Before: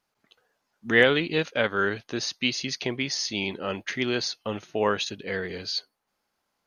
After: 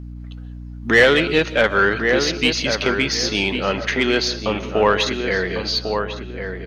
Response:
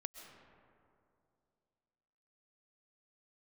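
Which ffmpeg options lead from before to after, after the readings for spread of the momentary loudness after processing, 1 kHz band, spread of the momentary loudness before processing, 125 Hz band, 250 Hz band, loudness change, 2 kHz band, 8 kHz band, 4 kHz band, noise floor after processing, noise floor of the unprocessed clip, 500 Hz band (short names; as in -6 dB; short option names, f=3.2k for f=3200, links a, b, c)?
15 LU, +9.5 dB, 11 LU, +8.5 dB, +7.5 dB, +8.0 dB, +8.5 dB, +6.5 dB, +8.0 dB, -34 dBFS, -79 dBFS, +8.5 dB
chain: -filter_complex "[0:a]asplit=2[a][b];[b]adelay=1099,lowpass=f=1.7k:p=1,volume=-7dB,asplit=2[c][d];[d]adelay=1099,lowpass=f=1.7k:p=1,volume=0.26,asplit=2[e][f];[f]adelay=1099,lowpass=f=1.7k:p=1,volume=0.26[g];[a][c][e][g]amix=inputs=4:normalize=0,asplit=2[h][i];[i]highpass=f=720:p=1,volume=15dB,asoftclip=type=tanh:threshold=-4.5dB[j];[h][j]amix=inputs=2:normalize=0,lowpass=f=3.9k:p=1,volume=-6dB,asplit=2[k][l];[1:a]atrim=start_sample=2205,afade=t=out:st=0.25:d=0.01,atrim=end_sample=11466,lowshelf=f=440:g=10[m];[l][m]afir=irnorm=-1:irlink=0,volume=5dB[n];[k][n]amix=inputs=2:normalize=0,aeval=exprs='val(0)+0.0447*(sin(2*PI*60*n/s)+sin(2*PI*2*60*n/s)/2+sin(2*PI*3*60*n/s)/3+sin(2*PI*4*60*n/s)/4+sin(2*PI*5*60*n/s)/5)':c=same,volume=-5dB"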